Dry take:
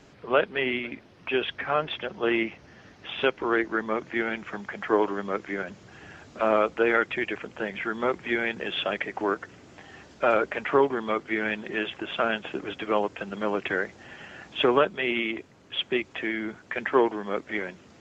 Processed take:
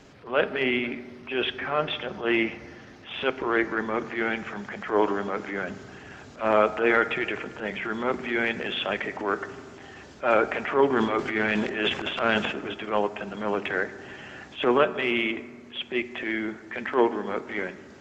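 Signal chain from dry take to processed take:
transient designer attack −10 dB, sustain +2 dB, from 0:10.93 sustain +11 dB, from 0:12.51 sustain −2 dB
convolution reverb RT60 1.7 s, pre-delay 4 ms, DRR 12 dB
level +2.5 dB

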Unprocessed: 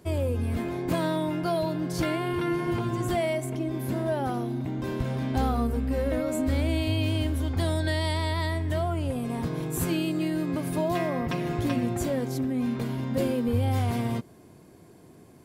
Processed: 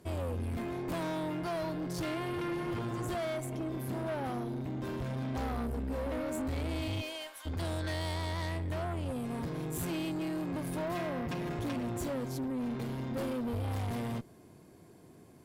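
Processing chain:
0:07.00–0:07.45: high-pass filter 370 Hz → 1,000 Hz 24 dB per octave
tube saturation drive 29 dB, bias 0.45
level −2.5 dB

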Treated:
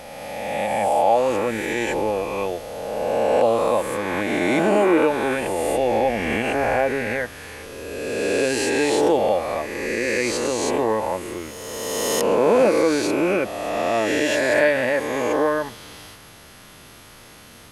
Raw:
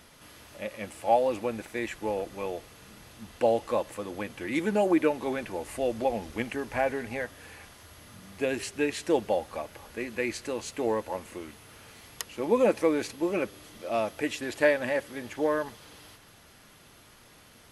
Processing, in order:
peak hold with a rise ahead of every peak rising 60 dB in 2.06 s
in parallel at +1 dB: brickwall limiter −20 dBFS, peak gain reduction 11.5 dB

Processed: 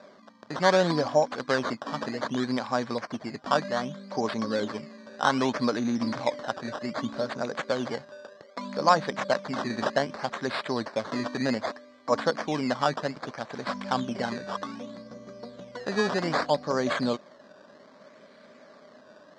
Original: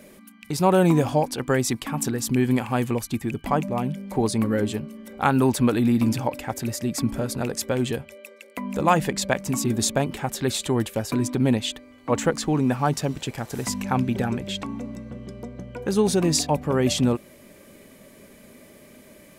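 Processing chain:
sample-and-hold swept by an LFO 14×, swing 100% 0.64 Hz
loudspeaker in its box 220–6,000 Hz, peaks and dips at 350 Hz −5 dB, 610 Hz +7 dB, 1,100 Hz +6 dB, 1,600 Hz +5 dB, 2,700 Hz −7 dB, 4,500 Hz +5 dB
level −4.5 dB

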